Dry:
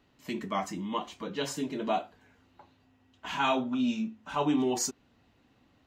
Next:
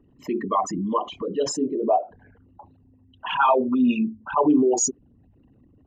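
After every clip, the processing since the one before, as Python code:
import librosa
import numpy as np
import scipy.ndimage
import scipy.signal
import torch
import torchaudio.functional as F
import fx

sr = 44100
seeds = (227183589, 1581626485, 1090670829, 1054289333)

y = fx.envelope_sharpen(x, sr, power=3.0)
y = y * librosa.db_to_amplitude(9.0)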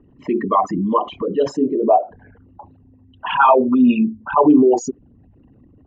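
y = scipy.signal.sosfilt(scipy.signal.butter(2, 2600.0, 'lowpass', fs=sr, output='sos'), x)
y = y * librosa.db_to_amplitude(6.5)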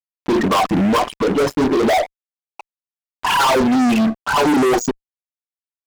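y = fx.fuzz(x, sr, gain_db=25.0, gate_db=-33.0)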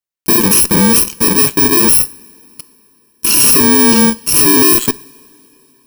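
y = fx.bit_reversed(x, sr, seeds[0], block=64)
y = fx.rev_double_slope(y, sr, seeds[1], early_s=0.5, late_s=3.6, knee_db=-18, drr_db=16.5)
y = y * librosa.db_to_amplitude(6.0)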